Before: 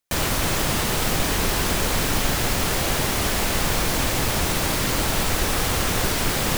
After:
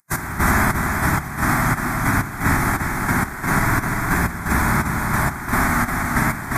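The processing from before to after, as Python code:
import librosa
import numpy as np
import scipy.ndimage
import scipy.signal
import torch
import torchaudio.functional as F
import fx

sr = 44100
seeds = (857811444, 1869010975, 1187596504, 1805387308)

p1 = fx.dereverb_blind(x, sr, rt60_s=1.4)
p2 = fx.graphic_eq(p1, sr, hz=(250, 2000, 4000), db=(3, 7, -8))
p3 = fx.rev_spring(p2, sr, rt60_s=1.8, pass_ms=(57,), chirp_ms=50, drr_db=-7.0)
p4 = fx.step_gate(p3, sr, bpm=190, pattern='xx...xxxx....', floor_db=-12.0, edge_ms=4.5)
p5 = fx.highpass(p4, sr, hz=170.0, slope=6)
p6 = fx.pitch_keep_formants(p5, sr, semitones=-7.5)
p7 = fx.low_shelf(p6, sr, hz=460.0, db=4.0)
p8 = p7 + fx.echo_single(p7, sr, ms=351, db=-4.5, dry=0)
p9 = fx.rider(p8, sr, range_db=4, speed_s=2.0)
p10 = fx.fixed_phaser(p9, sr, hz=1200.0, stages=4)
y = p10 * librosa.db_to_amplitude(4.0)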